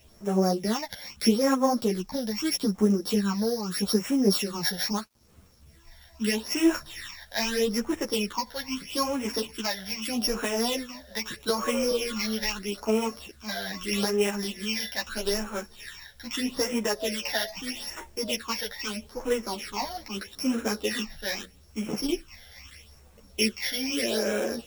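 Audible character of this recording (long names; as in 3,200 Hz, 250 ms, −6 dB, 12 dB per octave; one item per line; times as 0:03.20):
a buzz of ramps at a fixed pitch in blocks of 8 samples
phaser sweep stages 8, 0.79 Hz, lowest notch 330–4,500 Hz
a quantiser's noise floor 10 bits, dither none
a shimmering, thickened sound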